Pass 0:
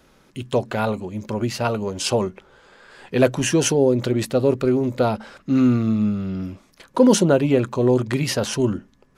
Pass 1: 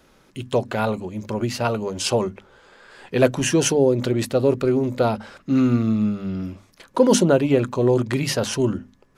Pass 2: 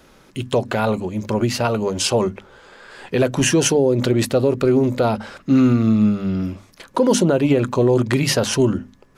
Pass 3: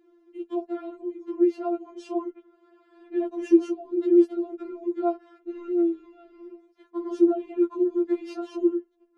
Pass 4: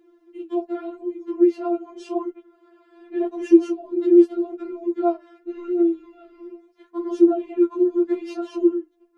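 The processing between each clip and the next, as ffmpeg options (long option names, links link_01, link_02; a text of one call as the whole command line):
ffmpeg -i in.wav -af "bandreject=frequency=50:width_type=h:width=6,bandreject=frequency=100:width_type=h:width=6,bandreject=frequency=150:width_type=h:width=6,bandreject=frequency=200:width_type=h:width=6,bandreject=frequency=250:width_type=h:width=6" out.wav
ffmpeg -i in.wav -af "alimiter=limit=-12.5dB:level=0:latency=1:release=143,volume=5.5dB" out.wav
ffmpeg -i in.wav -af "bandpass=frequency=290:width_type=q:width=1.5:csg=0,afftfilt=real='re*4*eq(mod(b,16),0)':imag='im*4*eq(mod(b,16),0)':win_size=2048:overlap=0.75" out.wav
ffmpeg -i in.wav -af "flanger=delay=6.1:depth=5.2:regen=-63:speed=0.84:shape=sinusoidal,volume=8dB" out.wav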